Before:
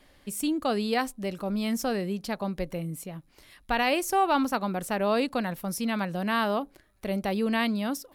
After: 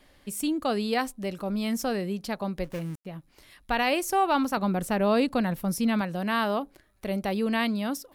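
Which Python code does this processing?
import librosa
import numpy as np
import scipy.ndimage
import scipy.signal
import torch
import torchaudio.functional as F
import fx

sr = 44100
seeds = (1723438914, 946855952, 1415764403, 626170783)

y = fx.dead_time(x, sr, dead_ms=0.29, at=(2.64, 3.06))
y = fx.low_shelf(y, sr, hz=290.0, db=7.5, at=(4.57, 6.01))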